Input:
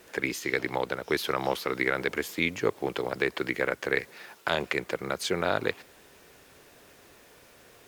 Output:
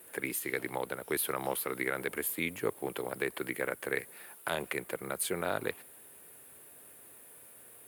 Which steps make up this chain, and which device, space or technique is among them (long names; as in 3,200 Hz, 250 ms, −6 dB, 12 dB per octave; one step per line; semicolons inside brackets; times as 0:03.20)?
budget condenser microphone (high-pass filter 78 Hz; high shelf with overshoot 7,800 Hz +11.5 dB, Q 3)
level −6 dB